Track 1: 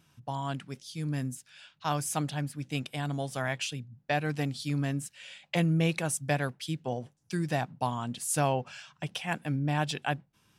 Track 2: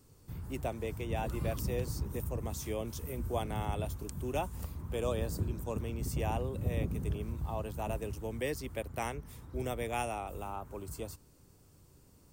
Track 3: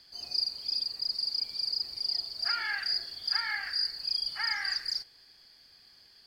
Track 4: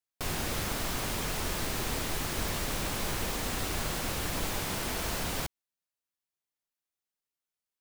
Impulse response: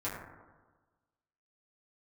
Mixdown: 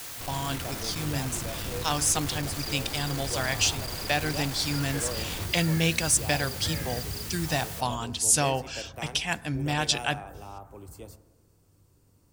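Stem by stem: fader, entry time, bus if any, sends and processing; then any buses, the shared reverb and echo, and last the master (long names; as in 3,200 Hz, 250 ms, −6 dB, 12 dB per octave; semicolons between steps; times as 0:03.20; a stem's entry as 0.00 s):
−1.0 dB, 0.00 s, send −20.5 dB, parametric band 5,800 Hz +14.5 dB 2.2 octaves
−4.5 dB, 0.00 s, send −13 dB, no processing
−9.5 dB, 2.25 s, no send, no processing
−4.5 dB, 0.00 s, send −9.5 dB, sign of each sample alone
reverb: on, RT60 1.3 s, pre-delay 5 ms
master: no processing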